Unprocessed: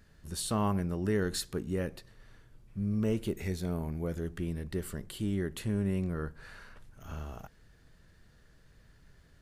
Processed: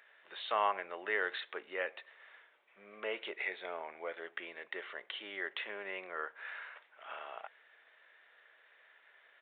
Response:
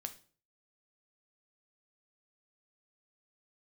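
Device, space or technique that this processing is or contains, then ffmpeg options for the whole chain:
musical greeting card: -af "aresample=8000,aresample=44100,highpass=f=580:w=0.5412,highpass=f=580:w=1.3066,equalizer=f=2.1k:t=o:w=0.58:g=7.5,volume=3.5dB"

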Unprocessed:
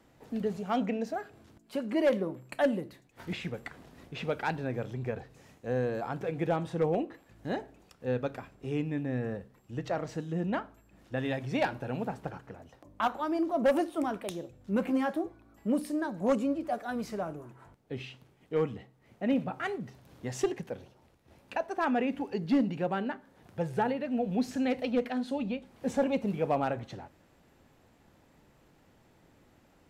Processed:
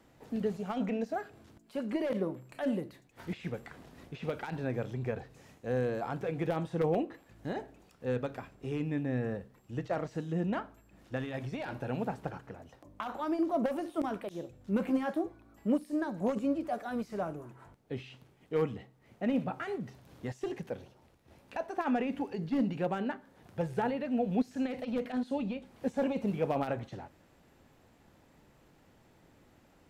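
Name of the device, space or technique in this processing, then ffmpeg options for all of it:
de-esser from a sidechain: -filter_complex "[0:a]asplit=2[a][b];[b]highpass=f=4.1k:w=0.5412,highpass=f=4.1k:w=1.3066,apad=whole_len=1318564[c];[a][c]sidechaincompress=threshold=-58dB:ratio=8:attack=0.96:release=21"

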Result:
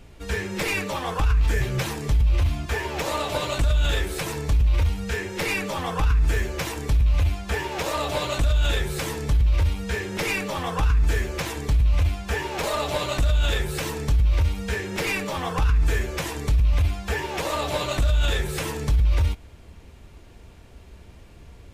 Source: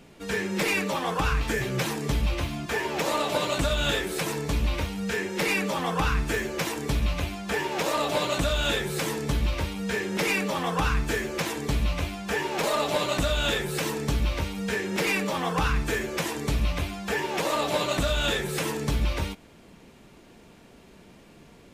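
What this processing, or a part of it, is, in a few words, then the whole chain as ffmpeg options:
car stereo with a boomy subwoofer: -af "lowshelf=f=120:t=q:w=1.5:g=13.5,alimiter=limit=-14dB:level=0:latency=1:release=10"

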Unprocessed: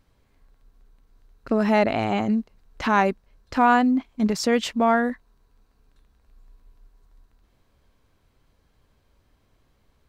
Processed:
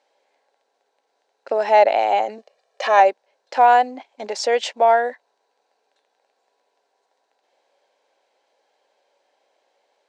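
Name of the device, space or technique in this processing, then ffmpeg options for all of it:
phone speaker on a table: -filter_complex "[0:a]asettb=1/sr,asplit=3[a][b][c];[a]atrim=end=2.384[d];[b]atrim=start=2.38:end=3,asetpts=PTS-STARTPTS,afade=t=in:d=0.004:c=qsin,afade=t=out:st=0.616:d=0.004:c=qsin,aecho=1:1:1.7:0.8,atrim=end_sample=27342[e];[c]atrim=start=2.996[f];[d][e]acrossfade=d=0.004:c1=hsin:c2=qsin[g];[g][f]acrossfade=d=0.004:c1=qsin:c2=hsin,highpass=f=440:w=0.5412,highpass=f=440:w=1.3066,equalizer=f=560:t=q:w=4:g=7,equalizer=f=810:t=q:w=4:g=9,equalizer=f=1.2k:t=q:w=4:g=-10,lowpass=f=7.8k:w=0.5412,lowpass=f=7.8k:w=1.3066,volume=2.5dB"

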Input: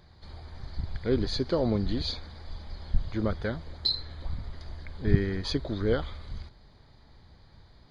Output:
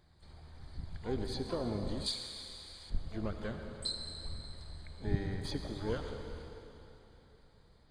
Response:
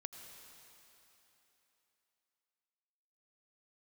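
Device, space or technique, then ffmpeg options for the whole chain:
shimmer-style reverb: -filter_complex "[0:a]asplit=2[a][b];[b]asetrate=88200,aresample=44100,atempo=0.5,volume=-12dB[c];[a][c]amix=inputs=2:normalize=0[d];[1:a]atrim=start_sample=2205[e];[d][e]afir=irnorm=-1:irlink=0,asettb=1/sr,asplit=3[f][g][h];[f]atrim=end=2.064[i];[g]atrim=start=2.06:end=2.9,asetpts=PTS-STARTPTS,afade=t=in:d=0.004:c=qsin,afade=t=out:st=0.836:d=0.004:c=qsin,tiltshelf=f=1.3k:g=-10[j];[h]atrim=start=2.896[k];[i][j]acrossfade=d=0.004:c1=hsin:c2=qsin[l];[l][k]acrossfade=d=0.004:c1=qsin:c2=hsin,volume=-5.5dB"

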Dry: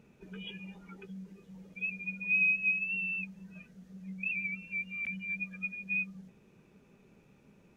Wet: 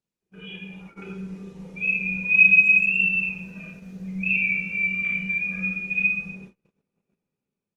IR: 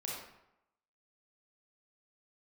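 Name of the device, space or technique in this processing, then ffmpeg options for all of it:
speakerphone in a meeting room: -filter_complex "[1:a]atrim=start_sample=2205[a];[0:a][a]afir=irnorm=-1:irlink=0,asplit=2[b][c];[c]adelay=250,highpass=300,lowpass=3.4k,asoftclip=type=hard:threshold=-26dB,volume=-29dB[d];[b][d]amix=inputs=2:normalize=0,dynaudnorm=f=240:g=7:m=8dB,agate=range=-34dB:threshold=-46dB:ratio=16:detection=peak,volume=3.5dB" -ar 48000 -c:a libopus -b:a 32k

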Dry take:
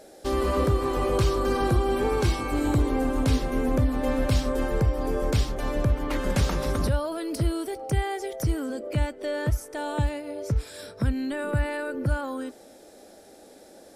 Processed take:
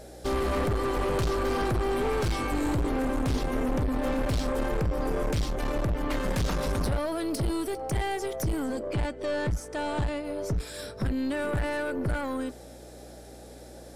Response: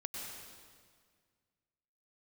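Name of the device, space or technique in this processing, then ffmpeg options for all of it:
valve amplifier with mains hum: -filter_complex "[0:a]asettb=1/sr,asplit=3[a][b][c];[a]atrim=end=8.834[d];[b]atrim=start=8.83:end=10.25,asetpts=PTS-STARTPTS,afade=t=in:d=0.004:c=qsin,afade=t=out:st=1.416:d=0.004:c=qsin,lowpass=8.3k[e];[c]atrim=start=10.246[f];[d][e]acrossfade=d=0.004:c1=hsin:c2=qsin[g];[g][f]acrossfade=d=0.004:c1=qsin:c2=hsin,aeval=exprs='(tanh(22.4*val(0)+0.3)-tanh(0.3))/22.4':c=same,aeval=exprs='val(0)+0.00251*(sin(2*PI*60*n/s)+sin(2*PI*2*60*n/s)/2+sin(2*PI*3*60*n/s)/3+sin(2*PI*4*60*n/s)/4+sin(2*PI*5*60*n/s)/5)':c=same,volume=3dB"

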